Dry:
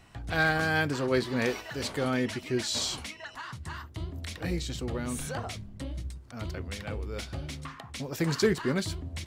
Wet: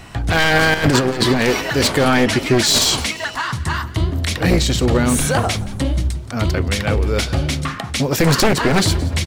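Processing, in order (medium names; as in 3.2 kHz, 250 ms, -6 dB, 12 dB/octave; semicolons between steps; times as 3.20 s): one-sided wavefolder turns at -27.5 dBFS; 0.74–1.41 s: compressor with a negative ratio -33 dBFS, ratio -0.5; 7.60–8.02 s: band-stop 1 kHz, Q 7.9; on a send: frequency-shifting echo 173 ms, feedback 52%, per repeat +38 Hz, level -19 dB; on the sum: loudness maximiser +21 dB; trim -3 dB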